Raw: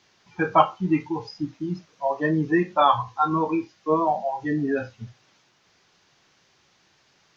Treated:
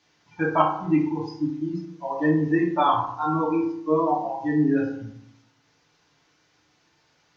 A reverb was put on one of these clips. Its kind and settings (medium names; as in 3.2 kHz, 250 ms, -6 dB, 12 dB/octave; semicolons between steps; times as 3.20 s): FDN reverb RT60 0.7 s, low-frequency decay 1.25×, high-frequency decay 0.5×, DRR -1.5 dB; trim -6 dB